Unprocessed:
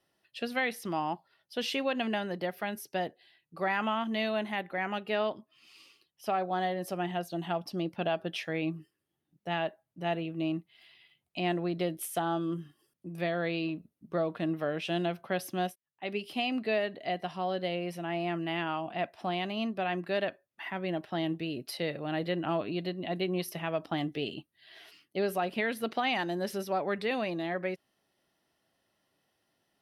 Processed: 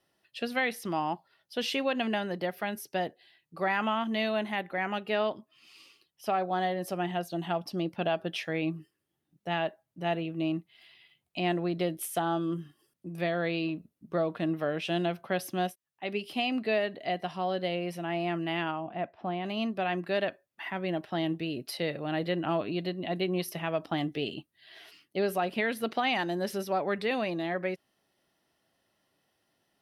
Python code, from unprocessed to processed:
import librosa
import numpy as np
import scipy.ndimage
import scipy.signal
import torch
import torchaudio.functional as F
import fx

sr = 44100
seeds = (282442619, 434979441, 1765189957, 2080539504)

y = fx.spacing_loss(x, sr, db_at_10k=34, at=(18.7, 19.44), fade=0.02)
y = y * 10.0 ** (1.5 / 20.0)